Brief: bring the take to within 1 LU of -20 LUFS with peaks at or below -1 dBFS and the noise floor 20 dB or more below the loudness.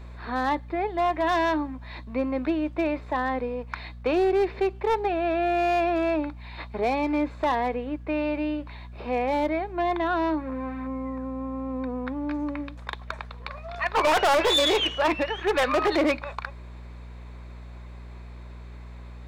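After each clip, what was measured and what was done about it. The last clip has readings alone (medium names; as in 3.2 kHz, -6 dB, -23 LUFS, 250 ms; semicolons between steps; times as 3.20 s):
clipped samples 1.0%; clipping level -17.0 dBFS; hum 60 Hz; highest harmonic 240 Hz; hum level -39 dBFS; loudness -26.0 LUFS; peak level -17.0 dBFS; loudness target -20.0 LUFS
-> clip repair -17 dBFS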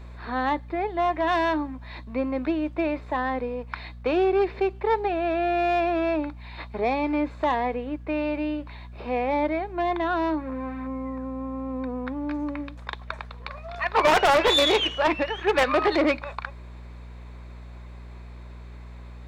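clipped samples 0.0%; hum 60 Hz; highest harmonic 240 Hz; hum level -39 dBFS
-> de-hum 60 Hz, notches 4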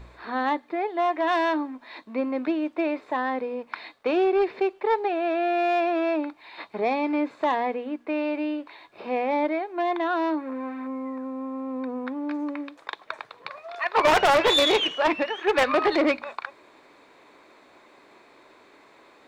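hum not found; loudness -25.5 LUFS; peak level -7.5 dBFS; loudness target -20.0 LUFS
-> trim +5.5 dB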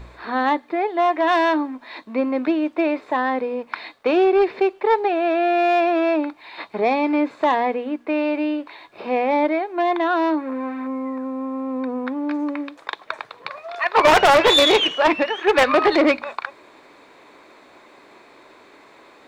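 loudness -20.0 LUFS; peak level -2.0 dBFS; noise floor -50 dBFS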